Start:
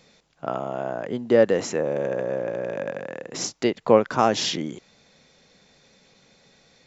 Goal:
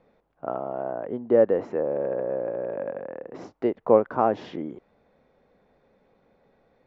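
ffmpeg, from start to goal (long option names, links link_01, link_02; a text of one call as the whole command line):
ffmpeg -i in.wav -af "lowpass=1000,equalizer=frequency=150:width=1.1:gain=-8" out.wav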